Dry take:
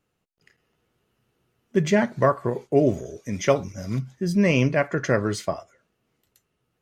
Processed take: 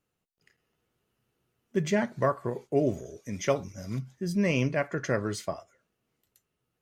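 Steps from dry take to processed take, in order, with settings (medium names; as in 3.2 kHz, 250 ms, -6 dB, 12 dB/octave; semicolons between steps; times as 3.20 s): treble shelf 7.4 kHz +5 dB; trim -6.5 dB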